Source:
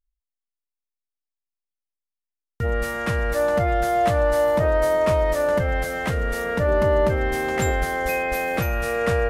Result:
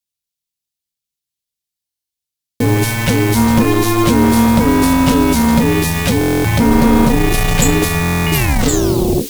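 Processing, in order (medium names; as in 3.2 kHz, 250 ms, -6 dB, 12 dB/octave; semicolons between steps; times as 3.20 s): tape stop on the ending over 0.96 s; ring modulator 360 Hz; word length cut 8-bit, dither triangular; tone controls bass +12 dB, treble -1 dB; gate -34 dBFS, range -55 dB; FFT filter 470 Hz 0 dB, 1.3 kHz -4 dB, 3.8 kHz +12 dB; Chebyshev shaper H 4 -8 dB, 5 -7 dB, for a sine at -2.5 dBFS; buffer glitch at 1.86/6.19/8.01 s, samples 1024, times 10; trim -1.5 dB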